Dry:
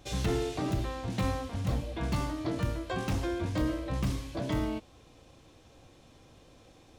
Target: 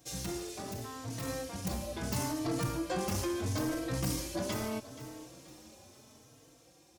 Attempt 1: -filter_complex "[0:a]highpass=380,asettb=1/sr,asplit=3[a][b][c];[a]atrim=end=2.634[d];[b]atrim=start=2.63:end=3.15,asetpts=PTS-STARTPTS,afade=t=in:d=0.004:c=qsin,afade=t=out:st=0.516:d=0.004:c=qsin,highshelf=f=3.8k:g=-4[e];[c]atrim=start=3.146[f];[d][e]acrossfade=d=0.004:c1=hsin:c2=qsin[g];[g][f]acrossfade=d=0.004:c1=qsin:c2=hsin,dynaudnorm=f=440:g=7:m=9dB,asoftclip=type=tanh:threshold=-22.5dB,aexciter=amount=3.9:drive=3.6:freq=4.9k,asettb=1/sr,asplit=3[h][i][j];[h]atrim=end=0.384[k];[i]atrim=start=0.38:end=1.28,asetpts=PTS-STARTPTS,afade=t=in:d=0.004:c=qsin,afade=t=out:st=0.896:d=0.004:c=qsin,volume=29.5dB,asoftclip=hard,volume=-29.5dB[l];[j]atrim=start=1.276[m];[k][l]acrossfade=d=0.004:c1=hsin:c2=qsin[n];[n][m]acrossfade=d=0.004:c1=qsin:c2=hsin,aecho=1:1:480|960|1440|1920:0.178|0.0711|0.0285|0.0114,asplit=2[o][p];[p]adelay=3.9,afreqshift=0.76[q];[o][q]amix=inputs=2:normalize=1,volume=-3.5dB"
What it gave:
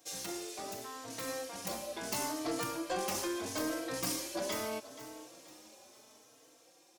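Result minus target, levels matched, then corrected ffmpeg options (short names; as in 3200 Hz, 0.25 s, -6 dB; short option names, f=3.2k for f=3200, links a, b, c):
125 Hz band -13.5 dB
-filter_complex "[0:a]highpass=98,asettb=1/sr,asplit=3[a][b][c];[a]atrim=end=2.634[d];[b]atrim=start=2.63:end=3.15,asetpts=PTS-STARTPTS,afade=t=in:d=0.004:c=qsin,afade=t=out:st=0.516:d=0.004:c=qsin,highshelf=f=3.8k:g=-4[e];[c]atrim=start=3.146[f];[d][e]acrossfade=d=0.004:c1=hsin:c2=qsin[g];[g][f]acrossfade=d=0.004:c1=qsin:c2=hsin,dynaudnorm=f=440:g=7:m=9dB,asoftclip=type=tanh:threshold=-22.5dB,aexciter=amount=3.9:drive=3.6:freq=4.9k,asettb=1/sr,asplit=3[h][i][j];[h]atrim=end=0.384[k];[i]atrim=start=0.38:end=1.28,asetpts=PTS-STARTPTS,afade=t=in:d=0.004:c=qsin,afade=t=out:st=0.896:d=0.004:c=qsin,volume=29.5dB,asoftclip=hard,volume=-29.5dB[l];[j]atrim=start=1.276[m];[k][l]acrossfade=d=0.004:c1=hsin:c2=qsin[n];[n][m]acrossfade=d=0.004:c1=qsin:c2=hsin,aecho=1:1:480|960|1440|1920:0.178|0.0711|0.0285|0.0114,asplit=2[o][p];[p]adelay=3.9,afreqshift=0.76[q];[o][q]amix=inputs=2:normalize=1,volume=-3.5dB"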